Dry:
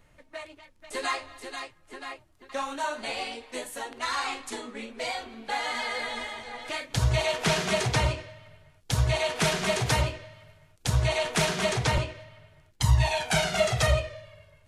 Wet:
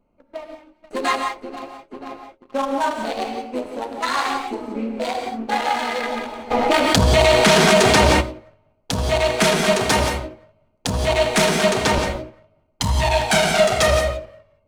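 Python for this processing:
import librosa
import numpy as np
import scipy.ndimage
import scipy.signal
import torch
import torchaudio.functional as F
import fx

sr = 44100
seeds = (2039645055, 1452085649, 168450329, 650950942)

y = fx.wiener(x, sr, points=25)
y = fx.low_shelf_res(y, sr, hz=170.0, db=-6.5, q=3.0)
y = fx.hum_notches(y, sr, base_hz=60, count=10)
y = fx.leveller(y, sr, passes=2)
y = fx.rev_gated(y, sr, seeds[0], gate_ms=200, shape='rising', drr_db=4.5)
y = fx.env_flatten(y, sr, amount_pct=70, at=(6.5, 8.2), fade=0.02)
y = F.gain(torch.from_numpy(y), 3.0).numpy()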